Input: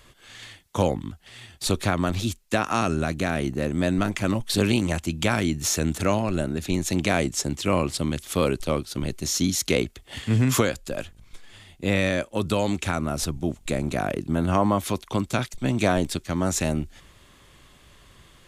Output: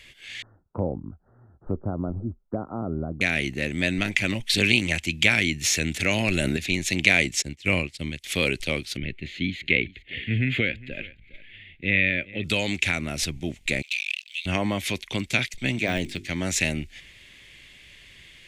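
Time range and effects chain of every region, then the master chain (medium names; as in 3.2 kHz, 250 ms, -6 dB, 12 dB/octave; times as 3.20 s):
0.42–3.21 s: steep low-pass 1.4 kHz 96 dB/octave + low-pass that closes with the level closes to 830 Hz, closed at -23 dBFS
6.11–6.57 s: treble shelf 10 kHz +11 dB + level flattener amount 100%
7.42–8.24 s: bass shelf 100 Hz +9.5 dB + upward expansion 2.5:1, over -34 dBFS
8.97–12.44 s: distance through air 250 m + static phaser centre 2.4 kHz, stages 4 + delay 408 ms -20.5 dB
13.82–14.46 s: steep high-pass 2.5 kHz 72 dB/octave + distance through air 110 m + waveshaping leveller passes 3
15.76–16.31 s: de-esser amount 90% + hum notches 50/100/150/200/250/300/350/400 Hz
whole clip: low-pass 3.4 kHz 6 dB/octave; resonant high shelf 1.6 kHz +10.5 dB, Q 3; trim -3.5 dB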